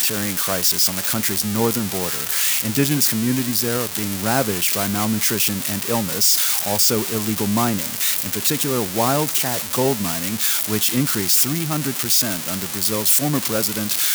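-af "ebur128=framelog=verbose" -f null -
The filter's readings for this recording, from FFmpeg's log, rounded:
Integrated loudness:
  I:         -18.1 LUFS
  Threshold: -28.1 LUFS
Loudness range:
  LRA:         1.6 LU
  Threshold: -38.2 LUFS
  LRA low:   -19.0 LUFS
  LRA high:  -17.4 LUFS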